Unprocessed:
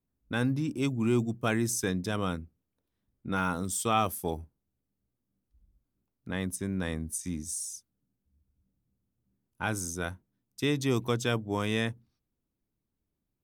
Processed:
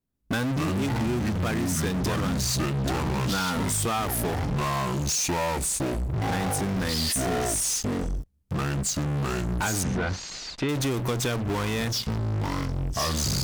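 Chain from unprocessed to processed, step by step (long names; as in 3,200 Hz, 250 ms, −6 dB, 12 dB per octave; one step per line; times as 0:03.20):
delay with pitch and tempo change per echo 147 ms, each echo −5 semitones, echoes 2
in parallel at −11.5 dB: fuzz pedal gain 50 dB, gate −59 dBFS
0:09.83–0:10.69: on the sum: low-pass filter 2,700 Hz 12 dB per octave
downward compressor, threshold −24 dBFS, peak gain reduction 7 dB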